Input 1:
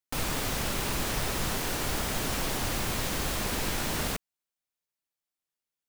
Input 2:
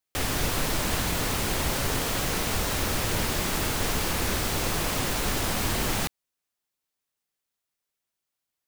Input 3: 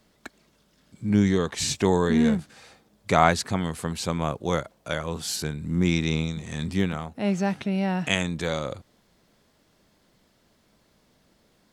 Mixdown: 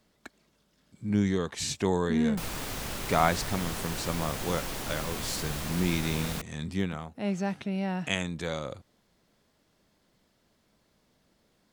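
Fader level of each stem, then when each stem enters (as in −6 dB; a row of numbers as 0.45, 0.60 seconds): −5.0 dB, muted, −5.5 dB; 2.25 s, muted, 0.00 s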